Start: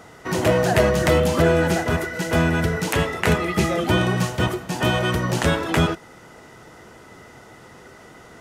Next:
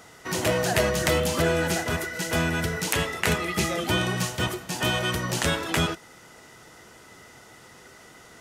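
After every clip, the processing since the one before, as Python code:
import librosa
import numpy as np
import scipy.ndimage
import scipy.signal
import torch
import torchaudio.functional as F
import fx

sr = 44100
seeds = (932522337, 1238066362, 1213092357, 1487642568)

y = fx.high_shelf(x, sr, hz=2100.0, db=10.0)
y = y * 10.0 ** (-7.0 / 20.0)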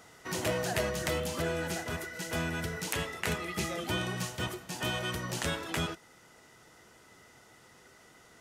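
y = fx.rider(x, sr, range_db=10, speed_s=2.0)
y = y * 10.0 ** (-9.0 / 20.0)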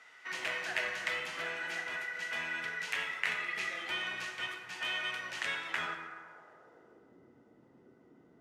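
y = fx.filter_sweep_bandpass(x, sr, from_hz=2100.0, to_hz=260.0, start_s=5.64, end_s=7.17, q=1.8)
y = fx.rev_plate(y, sr, seeds[0], rt60_s=1.9, hf_ratio=0.45, predelay_ms=0, drr_db=3.0)
y = y * 10.0 ** (3.5 / 20.0)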